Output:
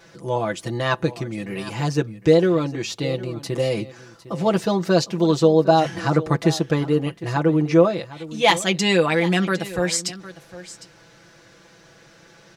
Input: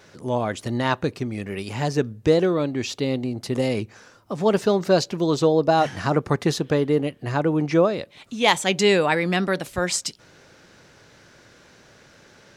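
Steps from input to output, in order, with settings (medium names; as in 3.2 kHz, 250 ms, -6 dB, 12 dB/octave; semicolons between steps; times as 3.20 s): comb 6 ms, depth 79%; delay 756 ms -16.5 dB; trim -1 dB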